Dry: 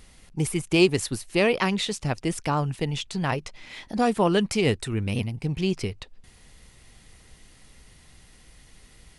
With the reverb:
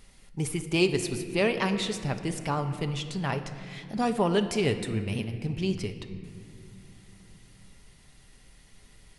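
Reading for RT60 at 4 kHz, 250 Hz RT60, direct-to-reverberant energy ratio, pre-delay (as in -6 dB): 1.5 s, 4.0 s, 6.5 dB, 5 ms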